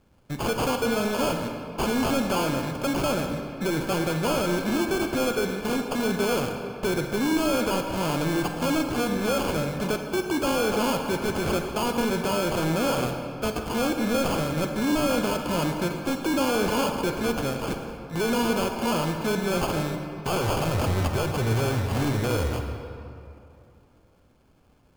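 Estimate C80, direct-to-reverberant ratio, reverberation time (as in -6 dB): 6.0 dB, 4.5 dB, 2.7 s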